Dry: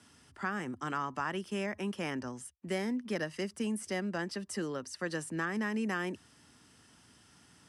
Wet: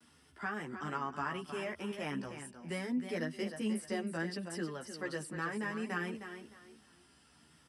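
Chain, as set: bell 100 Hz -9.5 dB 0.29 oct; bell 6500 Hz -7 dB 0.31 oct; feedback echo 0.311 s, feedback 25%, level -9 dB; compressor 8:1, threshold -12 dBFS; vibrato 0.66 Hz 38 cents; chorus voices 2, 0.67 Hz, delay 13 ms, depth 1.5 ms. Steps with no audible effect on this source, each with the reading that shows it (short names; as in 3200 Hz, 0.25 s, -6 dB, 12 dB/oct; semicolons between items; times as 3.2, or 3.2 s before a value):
compressor, threshold -12 dBFS: input peak -20.5 dBFS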